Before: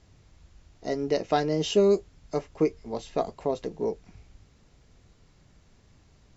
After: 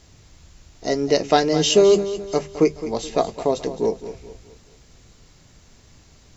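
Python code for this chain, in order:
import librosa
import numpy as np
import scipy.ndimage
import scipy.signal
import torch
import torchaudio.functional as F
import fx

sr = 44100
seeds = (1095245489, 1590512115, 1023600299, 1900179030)

p1 = fx.high_shelf(x, sr, hz=4100.0, db=10.0)
p2 = fx.hum_notches(p1, sr, base_hz=50, count=4)
p3 = p2 + fx.echo_feedback(p2, sr, ms=213, feedback_pct=40, wet_db=-13.0, dry=0)
y = p3 * 10.0 ** (7.0 / 20.0)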